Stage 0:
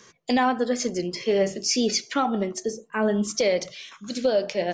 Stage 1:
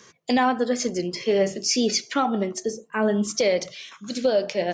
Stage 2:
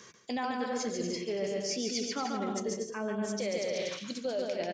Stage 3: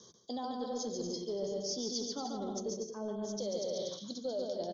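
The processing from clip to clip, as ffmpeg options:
-af "highpass=45,volume=1.12"
-af "aecho=1:1:140|238|306.6|354.6|388.2:0.631|0.398|0.251|0.158|0.1,areverse,acompressor=threshold=0.0355:ratio=6,areverse,volume=0.794"
-filter_complex "[0:a]acrossover=split=330|1000[s0][s1][s2];[s0]asoftclip=type=tanh:threshold=0.015[s3];[s2]asuperpass=centerf=4700:order=20:qfactor=1.3[s4];[s3][s1][s4]amix=inputs=3:normalize=0,volume=0.75"

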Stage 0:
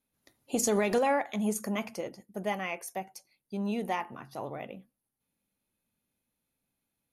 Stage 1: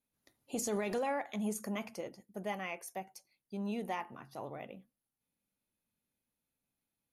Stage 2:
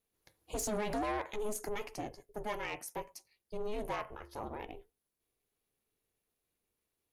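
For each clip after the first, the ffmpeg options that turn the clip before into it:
-af "alimiter=limit=0.0794:level=0:latency=1:release=20,volume=0.531"
-af "aeval=exprs='val(0)*sin(2*PI*210*n/s)':c=same,asoftclip=type=tanh:threshold=0.02,volume=1.88"

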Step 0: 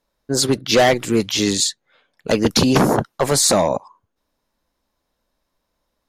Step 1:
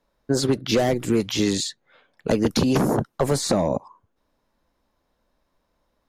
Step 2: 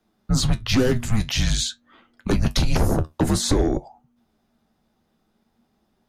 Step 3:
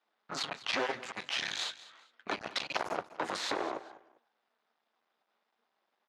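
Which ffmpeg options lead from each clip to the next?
-filter_complex "[0:a]highshelf=f=3300:g=-9,acrossover=split=460|6500[s0][s1][s2];[s0]acompressor=threshold=0.0708:ratio=4[s3];[s1]acompressor=threshold=0.0282:ratio=4[s4];[s2]acompressor=threshold=0.0126:ratio=4[s5];[s3][s4][s5]amix=inputs=3:normalize=0,volume=1.5"
-af "flanger=delay=8.4:depth=4.6:regen=62:speed=0.48:shape=triangular,aeval=exprs='0.282*sin(PI/2*1.41*val(0)/0.282)':c=same,afreqshift=-240"
-af "aeval=exprs='max(val(0),0)':c=same,highpass=780,lowpass=3500,aecho=1:1:200|400:0.133|0.0347"

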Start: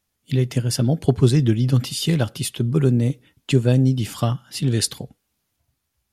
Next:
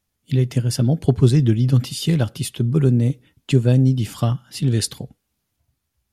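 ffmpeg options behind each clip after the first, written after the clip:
-af "lowshelf=f=270:g=5,volume=0.794"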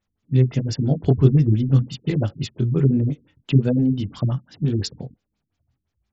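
-af "flanger=delay=19.5:depth=3.7:speed=1.3,afftfilt=real='re*lt(b*sr/1024,310*pow(7800/310,0.5+0.5*sin(2*PI*5.8*pts/sr)))':imag='im*lt(b*sr/1024,310*pow(7800/310,0.5+0.5*sin(2*PI*5.8*pts/sr)))':win_size=1024:overlap=0.75,volume=1.26"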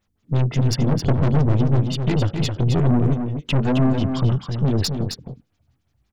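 -af "aeval=exprs='(tanh(15.8*val(0)+0.4)-tanh(0.4))/15.8':c=same,aecho=1:1:265:0.473,volume=2.51"

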